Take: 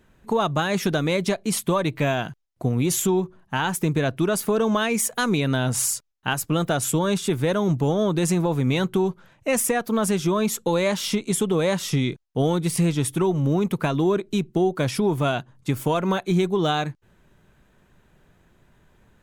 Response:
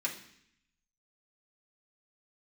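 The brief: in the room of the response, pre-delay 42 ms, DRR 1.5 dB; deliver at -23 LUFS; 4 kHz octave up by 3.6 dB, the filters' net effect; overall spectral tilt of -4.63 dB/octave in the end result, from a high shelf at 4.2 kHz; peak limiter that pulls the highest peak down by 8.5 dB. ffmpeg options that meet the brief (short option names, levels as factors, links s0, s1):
-filter_complex "[0:a]equalizer=f=4000:t=o:g=6.5,highshelf=f=4200:g=-4,alimiter=limit=0.15:level=0:latency=1,asplit=2[s0][s1];[1:a]atrim=start_sample=2205,adelay=42[s2];[s1][s2]afir=irnorm=-1:irlink=0,volume=0.531[s3];[s0][s3]amix=inputs=2:normalize=0,volume=1.12"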